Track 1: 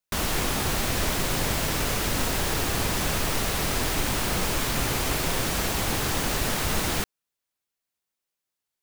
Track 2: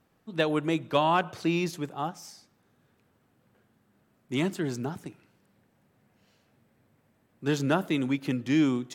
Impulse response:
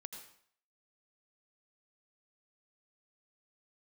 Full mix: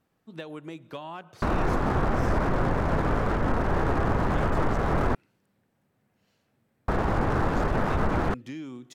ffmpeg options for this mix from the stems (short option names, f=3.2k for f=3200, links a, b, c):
-filter_complex "[0:a]lowpass=f=1.5k:w=0.5412,lowpass=f=1.5k:w=1.3066,aeval=exprs='sgn(val(0))*max(abs(val(0))-0.00708,0)':c=same,acontrast=86,adelay=1300,volume=-1dB,asplit=3[a][b][c];[a]atrim=end=5.15,asetpts=PTS-STARTPTS,afade=t=out:st=5.146:d=0.004:c=hsin[d];[b]atrim=start=5.15:end=6.88,asetpts=PTS-STARTPTS,volume=0[e];[c]atrim=start=6.88,asetpts=PTS-STARTPTS,afade=t=in:d=0.004:c=hsin[f];[d][e][f]concat=n=3:v=0:a=1[g];[1:a]acompressor=threshold=-31dB:ratio=5,volume=-5dB[h];[g][h]amix=inputs=2:normalize=0,alimiter=limit=-15dB:level=0:latency=1:release=40"